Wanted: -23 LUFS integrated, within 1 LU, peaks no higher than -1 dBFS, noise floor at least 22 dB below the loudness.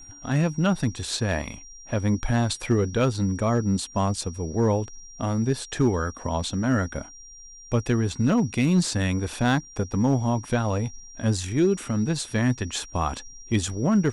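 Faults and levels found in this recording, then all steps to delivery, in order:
clipped samples 0.3%; clipping level -13.5 dBFS; steady tone 5.7 kHz; tone level -44 dBFS; loudness -25.0 LUFS; peak level -13.5 dBFS; loudness target -23.0 LUFS
-> clip repair -13.5 dBFS; band-stop 5.7 kHz, Q 30; trim +2 dB

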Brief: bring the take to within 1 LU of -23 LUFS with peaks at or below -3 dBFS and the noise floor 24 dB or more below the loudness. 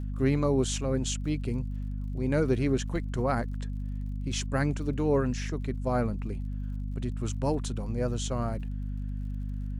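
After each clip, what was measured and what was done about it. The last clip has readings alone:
tick rate 52 per s; hum 50 Hz; highest harmonic 250 Hz; hum level -31 dBFS; loudness -30.5 LUFS; peak level -13.5 dBFS; loudness target -23.0 LUFS
-> de-click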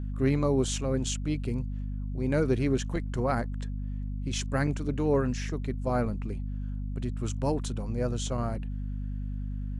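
tick rate 0.20 per s; hum 50 Hz; highest harmonic 250 Hz; hum level -31 dBFS
-> de-hum 50 Hz, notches 5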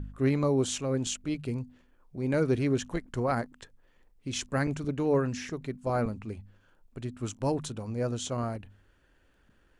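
hum not found; loudness -31.0 LUFS; peak level -15.0 dBFS; loudness target -23.0 LUFS
-> trim +8 dB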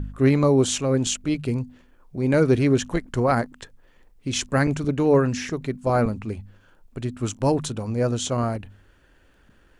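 loudness -23.0 LUFS; peak level -7.0 dBFS; noise floor -57 dBFS

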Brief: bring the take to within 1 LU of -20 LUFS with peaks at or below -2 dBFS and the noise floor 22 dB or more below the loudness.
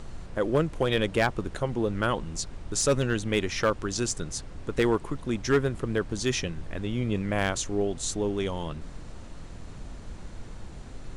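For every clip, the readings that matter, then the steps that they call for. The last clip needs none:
clipped samples 0.3%; clipping level -15.5 dBFS; noise floor -43 dBFS; noise floor target -51 dBFS; loudness -28.5 LUFS; peak level -15.5 dBFS; loudness target -20.0 LUFS
-> clip repair -15.5 dBFS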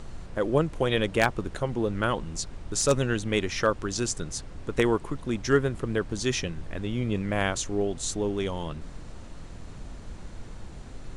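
clipped samples 0.0%; noise floor -43 dBFS; noise floor target -50 dBFS
-> noise print and reduce 7 dB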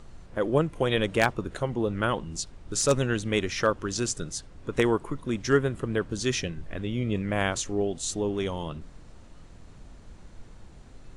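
noise floor -49 dBFS; noise floor target -50 dBFS
-> noise print and reduce 6 dB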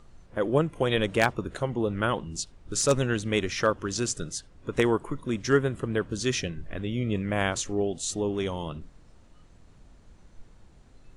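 noise floor -55 dBFS; loudness -28.0 LUFS; peak level -6.5 dBFS; loudness target -20.0 LUFS
-> trim +8 dB; peak limiter -2 dBFS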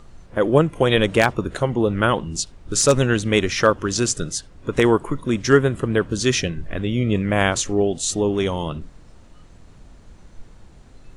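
loudness -20.5 LUFS; peak level -2.0 dBFS; noise floor -47 dBFS

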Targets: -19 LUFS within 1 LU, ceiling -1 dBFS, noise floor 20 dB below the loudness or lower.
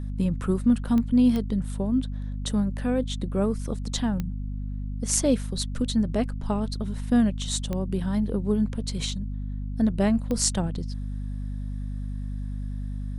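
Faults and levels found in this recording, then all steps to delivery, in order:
clicks found 5; hum 50 Hz; highest harmonic 250 Hz; hum level -29 dBFS; loudness -27.0 LUFS; peak level -5.0 dBFS; loudness target -19.0 LUFS
-> de-click; hum notches 50/100/150/200/250 Hz; trim +8 dB; peak limiter -1 dBFS

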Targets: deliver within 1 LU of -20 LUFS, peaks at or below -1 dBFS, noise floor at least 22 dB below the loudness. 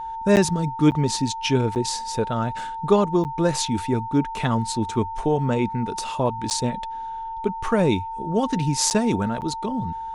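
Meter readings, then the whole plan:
dropouts 7; longest dropout 9.1 ms; steady tone 900 Hz; tone level -29 dBFS; loudness -23.0 LUFS; peak level -5.5 dBFS; loudness target -20.0 LUFS
-> interpolate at 0.36/0.91/1.75/3.24/6.50/8.90/9.41 s, 9.1 ms; band-stop 900 Hz, Q 30; trim +3 dB

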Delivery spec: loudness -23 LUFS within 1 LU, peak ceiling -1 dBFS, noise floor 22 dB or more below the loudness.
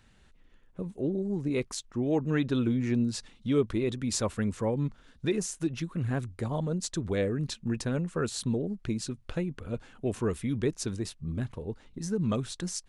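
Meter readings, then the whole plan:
loudness -31.5 LUFS; peak level -15.5 dBFS; loudness target -23.0 LUFS
-> trim +8.5 dB

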